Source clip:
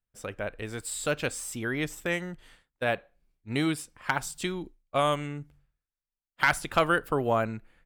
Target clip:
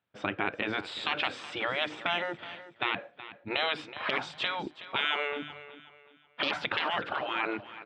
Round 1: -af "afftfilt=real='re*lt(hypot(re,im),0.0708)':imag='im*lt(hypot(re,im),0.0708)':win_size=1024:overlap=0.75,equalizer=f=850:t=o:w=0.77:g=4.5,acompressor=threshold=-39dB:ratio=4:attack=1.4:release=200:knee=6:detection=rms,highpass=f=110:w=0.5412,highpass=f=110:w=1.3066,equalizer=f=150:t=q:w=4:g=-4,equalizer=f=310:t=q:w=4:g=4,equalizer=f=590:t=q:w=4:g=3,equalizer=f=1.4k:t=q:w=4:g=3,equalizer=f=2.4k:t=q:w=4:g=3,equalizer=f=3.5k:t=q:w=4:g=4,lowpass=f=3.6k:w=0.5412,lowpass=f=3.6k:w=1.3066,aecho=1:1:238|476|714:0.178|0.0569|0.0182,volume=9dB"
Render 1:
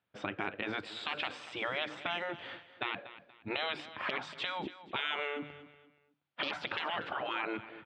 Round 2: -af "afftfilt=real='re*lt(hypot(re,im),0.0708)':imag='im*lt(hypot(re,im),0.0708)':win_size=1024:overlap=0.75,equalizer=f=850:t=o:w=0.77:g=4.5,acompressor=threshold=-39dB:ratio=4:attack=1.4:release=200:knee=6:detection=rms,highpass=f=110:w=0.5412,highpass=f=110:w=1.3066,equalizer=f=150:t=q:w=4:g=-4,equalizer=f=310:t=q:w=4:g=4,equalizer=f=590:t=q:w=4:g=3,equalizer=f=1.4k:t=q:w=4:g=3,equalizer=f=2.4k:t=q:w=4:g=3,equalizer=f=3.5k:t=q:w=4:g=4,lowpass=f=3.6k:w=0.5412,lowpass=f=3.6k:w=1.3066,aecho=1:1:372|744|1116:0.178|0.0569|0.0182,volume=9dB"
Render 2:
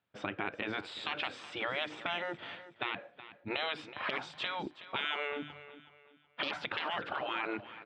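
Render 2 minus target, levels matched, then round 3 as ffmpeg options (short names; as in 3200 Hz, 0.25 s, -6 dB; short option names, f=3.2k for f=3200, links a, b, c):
compressor: peak gain reduction +6.5 dB
-af "afftfilt=real='re*lt(hypot(re,im),0.0708)':imag='im*lt(hypot(re,im),0.0708)':win_size=1024:overlap=0.75,equalizer=f=850:t=o:w=0.77:g=4.5,acompressor=threshold=-30dB:ratio=4:attack=1.4:release=200:knee=6:detection=rms,highpass=f=110:w=0.5412,highpass=f=110:w=1.3066,equalizer=f=150:t=q:w=4:g=-4,equalizer=f=310:t=q:w=4:g=4,equalizer=f=590:t=q:w=4:g=3,equalizer=f=1.4k:t=q:w=4:g=3,equalizer=f=2.4k:t=q:w=4:g=3,equalizer=f=3.5k:t=q:w=4:g=4,lowpass=f=3.6k:w=0.5412,lowpass=f=3.6k:w=1.3066,aecho=1:1:372|744|1116:0.178|0.0569|0.0182,volume=9dB"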